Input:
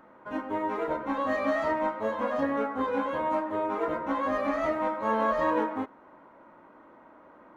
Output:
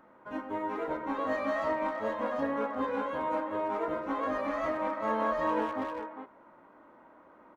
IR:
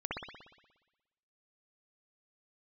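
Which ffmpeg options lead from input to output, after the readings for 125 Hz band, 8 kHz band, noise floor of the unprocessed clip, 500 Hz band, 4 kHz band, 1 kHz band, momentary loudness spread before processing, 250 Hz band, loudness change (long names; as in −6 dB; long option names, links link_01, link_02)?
−3.5 dB, can't be measured, −55 dBFS, −3.0 dB, −3.0 dB, −3.0 dB, 5 LU, −3.5 dB, −3.5 dB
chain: -filter_complex "[0:a]asplit=2[link_01][link_02];[link_02]adelay=400,highpass=300,lowpass=3400,asoftclip=type=hard:threshold=-22dB,volume=-6dB[link_03];[link_01][link_03]amix=inputs=2:normalize=0,volume=-4dB"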